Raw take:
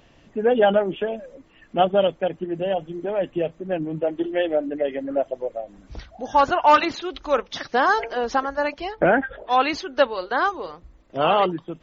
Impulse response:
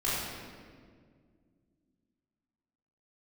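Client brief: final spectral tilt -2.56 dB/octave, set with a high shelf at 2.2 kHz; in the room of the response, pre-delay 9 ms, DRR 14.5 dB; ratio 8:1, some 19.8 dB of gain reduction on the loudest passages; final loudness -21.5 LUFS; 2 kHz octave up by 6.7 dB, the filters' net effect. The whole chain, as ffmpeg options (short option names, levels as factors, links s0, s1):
-filter_complex "[0:a]equalizer=f=2000:t=o:g=7,highshelf=f=2200:g=4.5,acompressor=threshold=0.0355:ratio=8,asplit=2[s0][s1];[1:a]atrim=start_sample=2205,adelay=9[s2];[s1][s2]afir=irnorm=-1:irlink=0,volume=0.0631[s3];[s0][s3]amix=inputs=2:normalize=0,volume=3.98"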